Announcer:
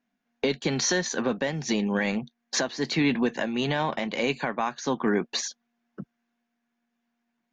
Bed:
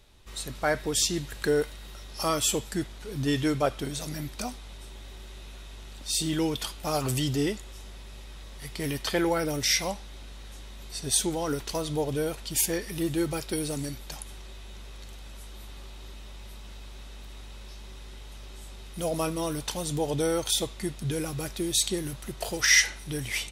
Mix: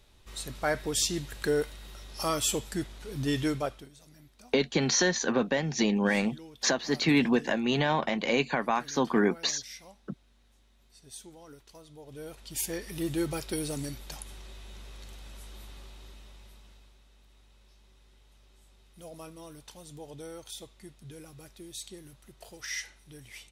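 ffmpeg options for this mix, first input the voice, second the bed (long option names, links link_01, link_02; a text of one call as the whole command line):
ffmpeg -i stem1.wav -i stem2.wav -filter_complex "[0:a]adelay=4100,volume=0dB[link_01];[1:a]volume=16dB,afade=type=out:start_time=3.47:duration=0.42:silence=0.11885,afade=type=in:start_time=12.02:duration=1.14:silence=0.11885,afade=type=out:start_time=15.55:duration=1.45:silence=0.199526[link_02];[link_01][link_02]amix=inputs=2:normalize=0" out.wav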